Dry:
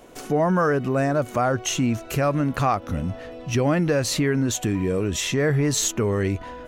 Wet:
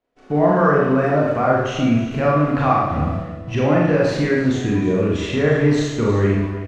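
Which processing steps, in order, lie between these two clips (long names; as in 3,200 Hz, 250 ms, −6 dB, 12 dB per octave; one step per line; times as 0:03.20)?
background noise white −49 dBFS
low-pass filter 2,700 Hz 12 dB per octave
downward expander −28 dBFS
on a send: single-tap delay 315 ms −13.5 dB
on the sum: four-comb reverb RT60 0.87 s, combs from 27 ms, DRR −4 dB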